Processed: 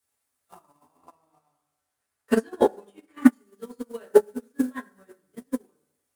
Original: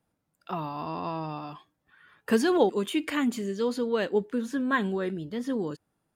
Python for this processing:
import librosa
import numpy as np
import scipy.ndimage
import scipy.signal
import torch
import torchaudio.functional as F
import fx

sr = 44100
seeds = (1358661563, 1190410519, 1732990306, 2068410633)

y = fx.dmg_noise_colour(x, sr, seeds[0], colour='white', level_db=-44.0)
y = fx.high_shelf(y, sr, hz=7200.0, db=-6.0, at=(0.97, 3.26))
y = fx.echo_feedback(y, sr, ms=103, feedback_pct=55, wet_db=-15.5)
y = fx.rev_fdn(y, sr, rt60_s=1.0, lf_ratio=0.8, hf_ratio=0.3, size_ms=70.0, drr_db=-7.0)
y = fx.transient(y, sr, attack_db=11, sustain_db=-1)
y = fx.peak_eq(y, sr, hz=9600.0, db=10.0, octaves=0.78)
y = fx.upward_expand(y, sr, threshold_db=-26.0, expansion=2.5)
y = y * 10.0 ** (-6.5 / 20.0)